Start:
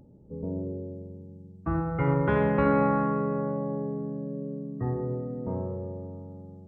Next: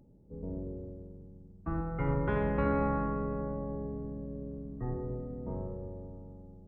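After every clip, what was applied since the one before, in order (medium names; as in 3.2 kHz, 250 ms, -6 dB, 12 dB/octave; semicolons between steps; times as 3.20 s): octave divider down 2 oct, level -3 dB; trim -7 dB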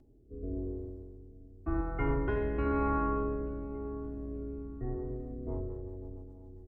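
comb 2.8 ms, depth 86%; rotary cabinet horn 0.9 Hz, later 7.5 Hz, at 5.06 s; feedback delay 877 ms, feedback 33%, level -24 dB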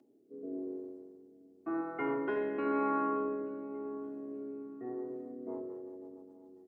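high-pass 230 Hz 24 dB/octave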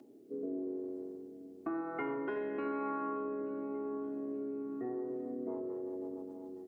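compression 4:1, threshold -46 dBFS, peak gain reduction 15.5 dB; trim +9 dB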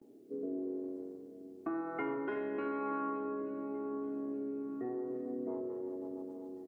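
delay 331 ms -14 dB; gate with hold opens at -51 dBFS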